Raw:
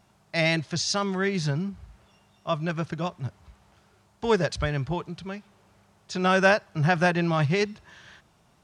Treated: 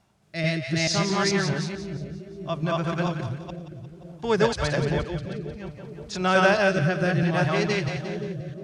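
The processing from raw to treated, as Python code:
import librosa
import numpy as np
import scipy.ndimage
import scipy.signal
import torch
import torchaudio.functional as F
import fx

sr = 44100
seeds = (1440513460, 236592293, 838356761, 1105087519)

y = fx.reverse_delay(x, sr, ms=219, wet_db=0.0)
y = fx.echo_split(y, sr, split_hz=590.0, low_ms=524, high_ms=176, feedback_pct=52, wet_db=-8.5)
y = fx.rotary(y, sr, hz=0.6)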